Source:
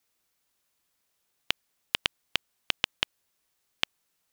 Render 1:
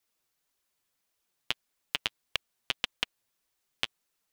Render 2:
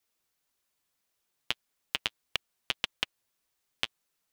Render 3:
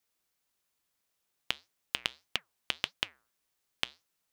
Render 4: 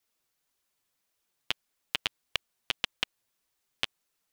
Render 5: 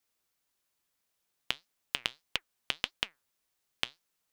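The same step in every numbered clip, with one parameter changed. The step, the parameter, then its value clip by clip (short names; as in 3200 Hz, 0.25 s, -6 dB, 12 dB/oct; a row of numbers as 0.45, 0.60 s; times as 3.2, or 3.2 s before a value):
flange, regen: +18, -26, -87, -3, +81%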